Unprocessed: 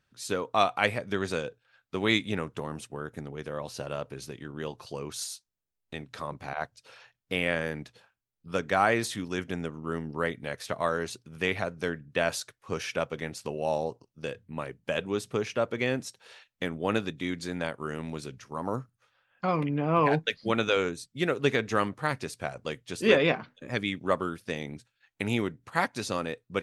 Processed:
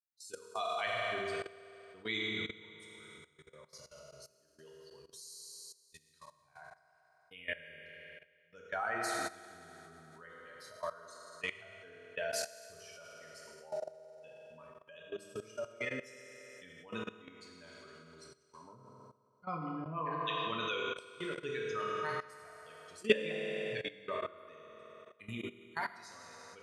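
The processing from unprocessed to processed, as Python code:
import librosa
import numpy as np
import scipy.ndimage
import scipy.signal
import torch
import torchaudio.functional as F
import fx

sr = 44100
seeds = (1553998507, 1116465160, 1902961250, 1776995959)

y = fx.bin_expand(x, sr, power=2.0)
y = fx.peak_eq(y, sr, hz=660.0, db=-3.0, octaves=0.6)
y = fx.rev_fdn(y, sr, rt60_s=2.8, lf_ratio=0.7, hf_ratio=0.85, size_ms=14.0, drr_db=-2.5)
y = fx.level_steps(y, sr, step_db=17)
y = fx.low_shelf(y, sr, hz=360.0, db=-10.0)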